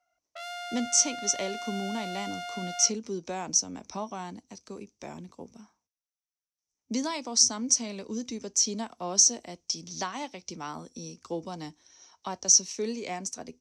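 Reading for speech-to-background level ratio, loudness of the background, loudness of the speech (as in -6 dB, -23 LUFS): 10.0 dB, -37.5 LUFS, -27.5 LUFS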